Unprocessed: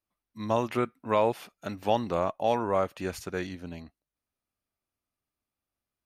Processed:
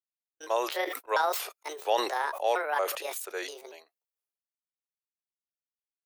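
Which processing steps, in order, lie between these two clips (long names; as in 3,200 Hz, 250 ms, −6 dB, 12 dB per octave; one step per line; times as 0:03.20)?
pitch shifter gated in a rhythm +7 semitones, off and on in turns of 232 ms
Butterworth high-pass 390 Hz 48 dB per octave
noise gate −46 dBFS, range −47 dB
high-shelf EQ 6,900 Hz +11 dB
level that may fall only so fast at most 68 dB per second
level −1.5 dB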